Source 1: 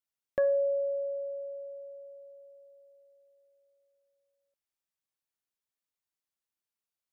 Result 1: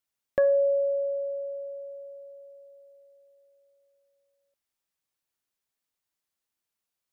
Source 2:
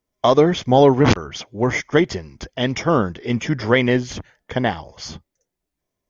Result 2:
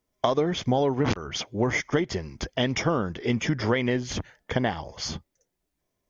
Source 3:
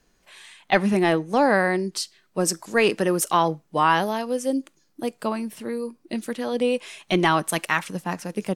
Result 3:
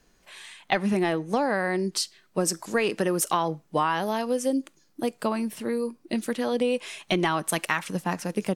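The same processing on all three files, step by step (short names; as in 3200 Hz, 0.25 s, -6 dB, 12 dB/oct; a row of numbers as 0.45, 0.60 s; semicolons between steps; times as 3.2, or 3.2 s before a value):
compressor 6:1, threshold -22 dBFS; match loudness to -27 LUFS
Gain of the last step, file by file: +5.0, +1.0, +1.5 dB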